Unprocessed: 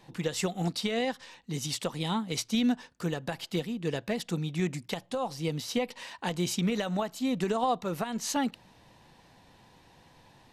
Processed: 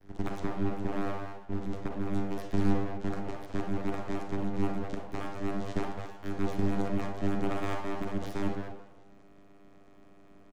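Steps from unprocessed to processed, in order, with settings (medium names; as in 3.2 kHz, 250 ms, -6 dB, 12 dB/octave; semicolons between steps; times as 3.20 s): bit-reversed sample order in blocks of 32 samples; 0.39–2.13 s: low-pass 1.4 kHz 6 dB/octave; in parallel at +1.5 dB: compression, threshold -42 dBFS, peak gain reduction 18 dB; on the sum: vocoder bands 4, saw 99.2 Hz; speakerphone echo 210 ms, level -8 dB; on a send at -3 dB: reverberation RT60 0.95 s, pre-delay 27 ms; on the sum: full-wave rectifier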